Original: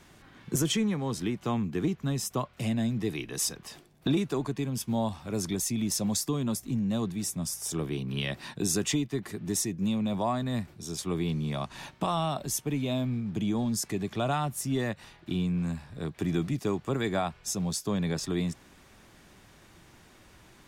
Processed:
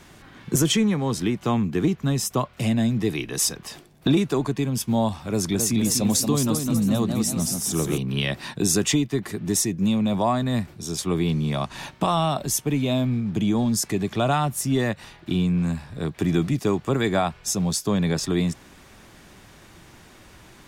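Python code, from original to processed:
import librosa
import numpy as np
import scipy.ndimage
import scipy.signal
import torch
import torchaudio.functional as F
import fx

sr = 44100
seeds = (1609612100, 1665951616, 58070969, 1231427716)

y = fx.echo_pitch(x, sr, ms=269, semitones=1, count=3, db_per_echo=-6.0, at=(5.28, 7.98))
y = F.gain(torch.from_numpy(y), 7.0).numpy()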